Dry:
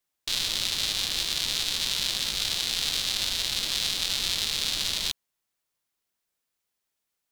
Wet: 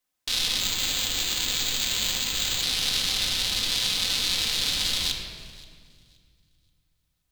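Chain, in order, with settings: thinning echo 526 ms, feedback 24%, high-pass 920 Hz, level -22 dB; simulated room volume 3300 m³, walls mixed, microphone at 2 m; 0.60–2.63 s: careless resampling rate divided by 4×, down filtered, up hold

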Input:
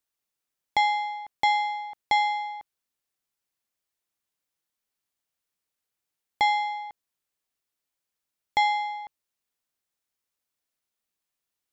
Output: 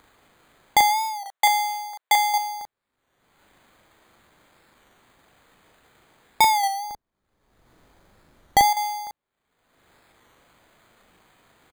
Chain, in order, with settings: local Wiener filter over 9 samples; 1.24–2.34 s: high-pass 730 Hz 12 dB/octave; 6.64–8.73 s: tilt EQ -2.5 dB/octave; upward compressor, threshold -44 dBFS; doubling 40 ms -2 dB; careless resampling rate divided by 8×, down filtered, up hold; warped record 33 1/3 rpm, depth 100 cents; trim +6.5 dB

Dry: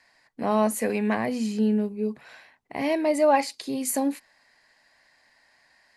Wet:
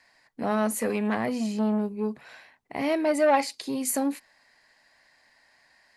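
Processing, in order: transformer saturation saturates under 740 Hz

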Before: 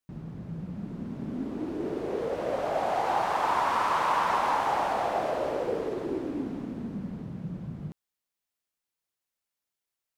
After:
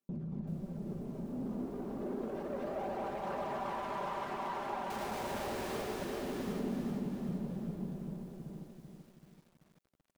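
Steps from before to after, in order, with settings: high-pass 74 Hz 12 dB/octave; hum notches 60/120 Hz; reverb removal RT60 1.2 s; peaking EQ 240 Hz +14.5 dB 2.6 oct; band-stop 1.9 kHz, Q 12; comb 5.1 ms, depth 78%; peak limiter -24.5 dBFS, peak gain reduction 16 dB; valve stage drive 29 dB, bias 0.4; phaser 0.3 Hz, delay 4.4 ms, feedback 37%; 4.90–5.82 s: Schmitt trigger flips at -39.5 dBFS; multi-tap echo 232/252/442/712/782/804 ms -4/-12/-11/-6.5/-7.5/-11 dB; bit-crushed delay 384 ms, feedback 55%, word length 9-bit, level -6 dB; trim -8.5 dB

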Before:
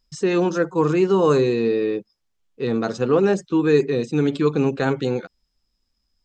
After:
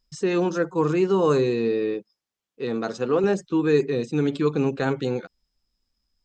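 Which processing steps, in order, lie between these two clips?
1.94–3.24 s: high-pass 210 Hz 6 dB/octave; trim -3 dB

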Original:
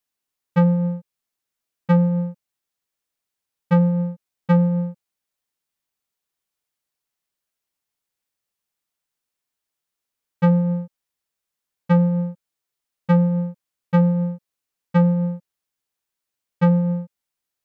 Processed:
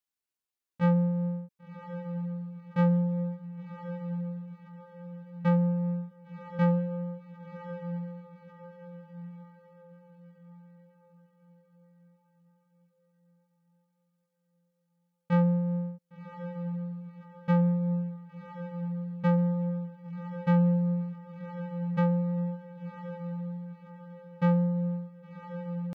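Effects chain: echo that smears into a reverb 736 ms, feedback 46%, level -9 dB; tempo 0.68×; trim -8.5 dB

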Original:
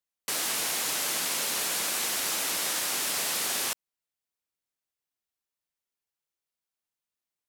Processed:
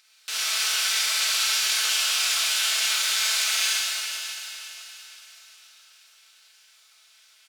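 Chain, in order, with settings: one-sided wavefolder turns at -25 dBFS; Butterworth band-pass 1.5 kHz, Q 0.54; comb 4.6 ms, depth 92%; upward compressor, threshold -45 dBFS; in parallel at -3 dB: saturation -27 dBFS, distortion -19 dB; on the sum: tilt EQ +4.5 dB/octave; echo that smears into a reverb 532 ms, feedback 41%, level -11 dB; Schroeder reverb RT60 2.3 s, combs from 32 ms, DRR -6 dB; formant shift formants +5 st; trim -7.5 dB

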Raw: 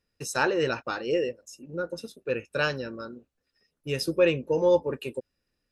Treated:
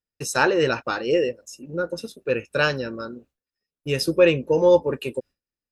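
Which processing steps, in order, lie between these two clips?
gate with hold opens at -53 dBFS; trim +5.5 dB

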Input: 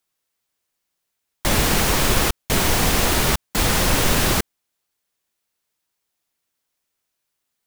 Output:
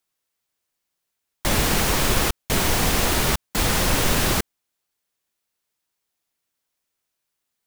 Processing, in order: trim -2 dB

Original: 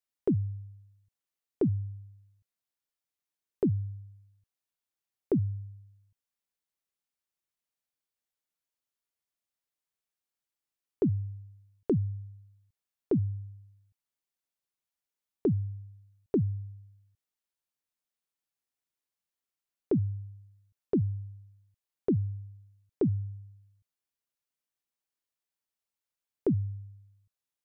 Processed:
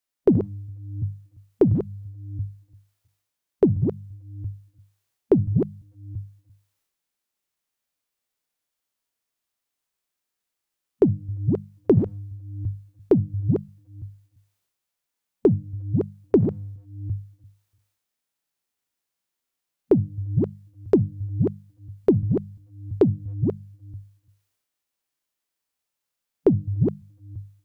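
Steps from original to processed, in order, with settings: chunks repeated in reverse 342 ms, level -2 dB; transient shaper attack +10 dB, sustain +6 dB; hum notches 50/100/150/200 Hz; harmonic-percussive split percussive -6 dB; trim +7.5 dB

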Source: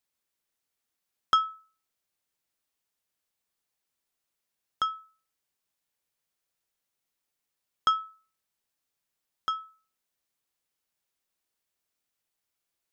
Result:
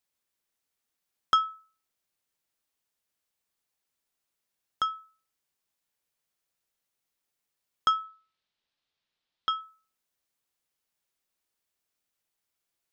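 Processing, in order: 8.04–9.61 s: resonant low-pass 3.8 kHz, resonance Q 2.1

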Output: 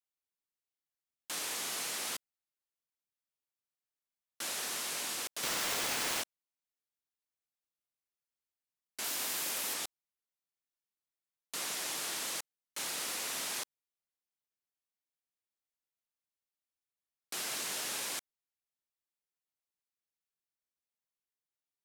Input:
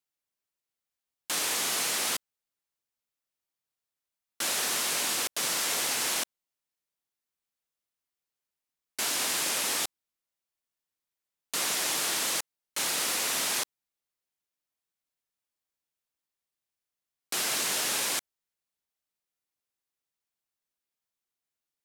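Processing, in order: 5.43–6.22 s: square wave that keeps the level; 9.04–9.74 s: peaking EQ 15 kHz +11 dB 0.39 oct; trim -8.5 dB

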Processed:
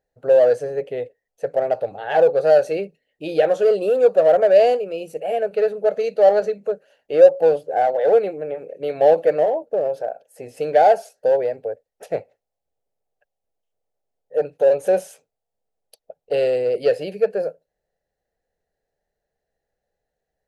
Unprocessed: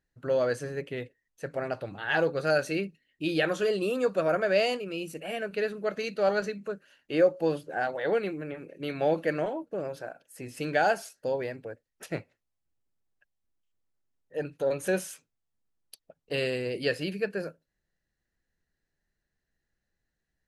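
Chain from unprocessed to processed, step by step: high-order bell 590 Hz +16 dB 1.2 oct; in parallel at -8.5 dB: hard clipper -14.5 dBFS, distortion -6 dB; on the sum: trim -4.5 dB

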